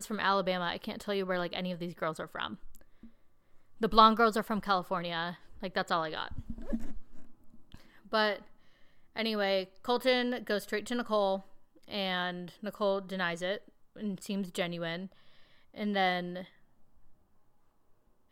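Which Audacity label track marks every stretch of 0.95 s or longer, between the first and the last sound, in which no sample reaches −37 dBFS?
2.760000	3.810000	silence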